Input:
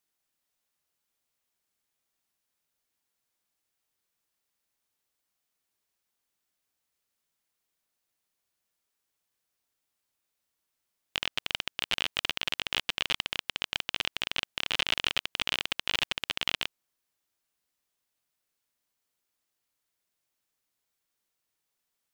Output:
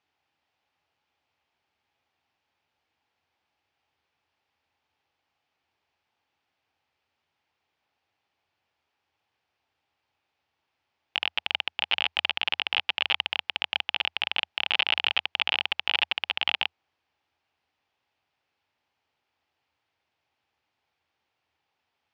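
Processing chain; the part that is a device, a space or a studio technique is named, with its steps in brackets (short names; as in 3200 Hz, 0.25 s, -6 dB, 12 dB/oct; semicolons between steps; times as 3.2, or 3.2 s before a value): guitar amplifier (tube stage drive 18 dB, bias 0.2; tone controls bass +1 dB, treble +3 dB; speaker cabinet 79–4000 Hz, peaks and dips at 83 Hz +10 dB, 190 Hz -6 dB, 820 Hz +9 dB, 2500 Hz +3 dB, 3900 Hz -4 dB); gain +8 dB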